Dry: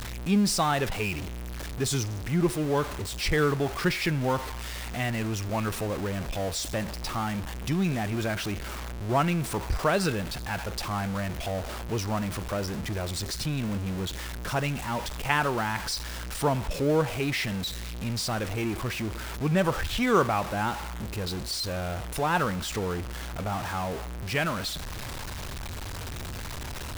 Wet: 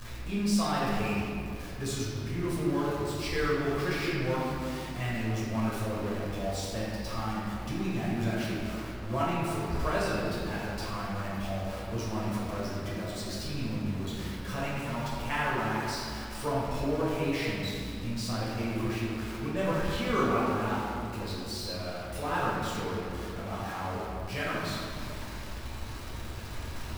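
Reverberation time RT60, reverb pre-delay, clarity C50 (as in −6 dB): 2.4 s, 6 ms, −2.0 dB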